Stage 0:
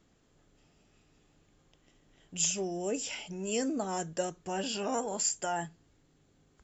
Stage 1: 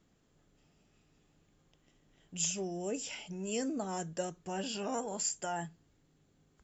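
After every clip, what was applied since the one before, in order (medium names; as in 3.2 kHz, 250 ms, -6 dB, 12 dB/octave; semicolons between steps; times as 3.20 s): peaking EQ 170 Hz +3.5 dB 0.77 oct; trim -4 dB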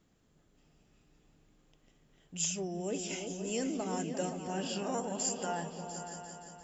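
delay with an opening low-pass 174 ms, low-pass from 200 Hz, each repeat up 2 oct, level -3 dB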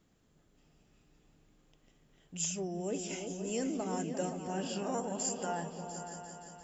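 dynamic bell 3.6 kHz, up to -4 dB, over -55 dBFS, Q 0.79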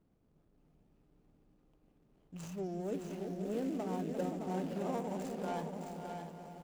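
median filter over 25 samples; on a send: delay 615 ms -6 dB; on the sum: trim -1.5 dB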